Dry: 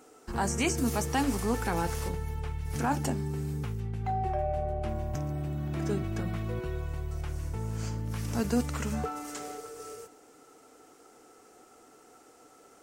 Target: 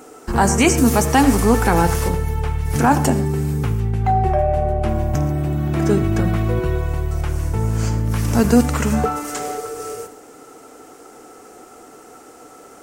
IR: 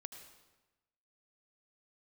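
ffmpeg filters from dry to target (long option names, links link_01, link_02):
-filter_complex "[0:a]asplit=2[link_01][link_02];[link_02]equalizer=frequency=4100:width_type=o:width=1.4:gain=-8[link_03];[1:a]atrim=start_sample=2205,afade=type=out:start_time=0.19:duration=0.01,atrim=end_sample=8820[link_04];[link_03][link_04]afir=irnorm=-1:irlink=0,volume=8dB[link_05];[link_01][link_05]amix=inputs=2:normalize=0,volume=7dB"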